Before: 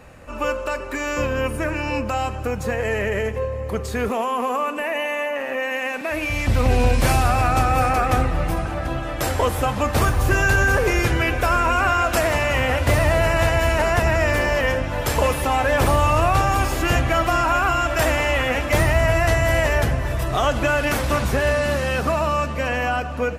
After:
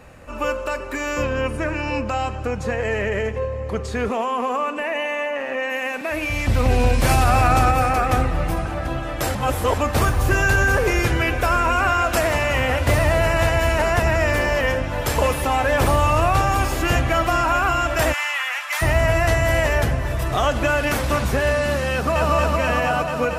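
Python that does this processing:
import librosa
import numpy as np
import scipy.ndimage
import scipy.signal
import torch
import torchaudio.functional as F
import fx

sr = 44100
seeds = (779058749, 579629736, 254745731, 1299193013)

y = fx.lowpass(x, sr, hz=7600.0, slope=12, at=(1.23, 5.7))
y = fx.env_flatten(y, sr, amount_pct=100, at=(7.09, 7.71))
y = fx.cheby2_highpass(y, sr, hz=220.0, order=4, stop_db=70, at=(18.12, 18.81), fade=0.02)
y = fx.echo_throw(y, sr, start_s=19.75, length_s=0.56, ms=500, feedback_pct=25, wet_db=-13.0)
y = fx.echo_throw(y, sr, start_s=21.92, length_s=0.41, ms=230, feedback_pct=85, wet_db=-2.0)
y = fx.edit(y, sr, fx.reverse_span(start_s=9.35, length_s=0.43), tone=tone)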